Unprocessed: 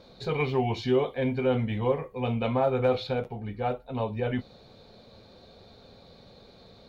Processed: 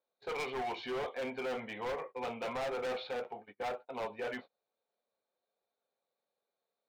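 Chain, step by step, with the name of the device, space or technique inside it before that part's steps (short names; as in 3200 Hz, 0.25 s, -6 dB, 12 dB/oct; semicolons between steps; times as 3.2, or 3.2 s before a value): walkie-talkie (BPF 570–2500 Hz; hard clip -34 dBFS, distortion -5 dB; gate -47 dBFS, range -31 dB)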